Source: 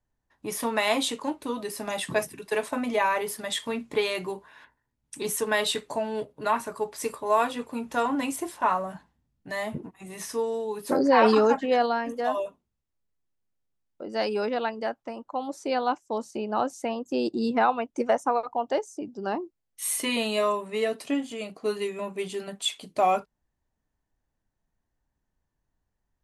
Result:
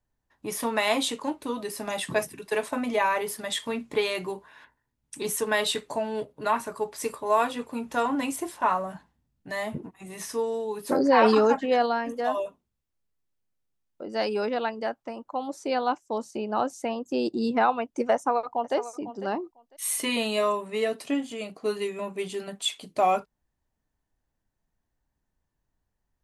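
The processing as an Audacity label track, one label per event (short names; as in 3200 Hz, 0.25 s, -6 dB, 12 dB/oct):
18.140000	18.760000	echo throw 0.5 s, feedback 15%, level -13.5 dB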